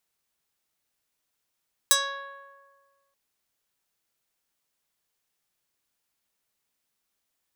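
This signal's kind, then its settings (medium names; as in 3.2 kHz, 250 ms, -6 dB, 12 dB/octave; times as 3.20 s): plucked string C#5, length 1.23 s, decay 1.65 s, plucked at 0.24, medium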